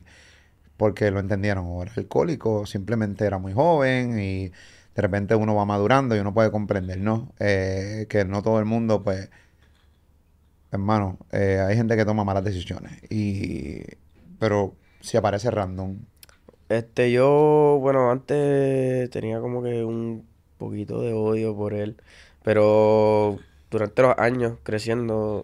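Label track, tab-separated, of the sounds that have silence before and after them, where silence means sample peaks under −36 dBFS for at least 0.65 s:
0.800000	9.250000	sound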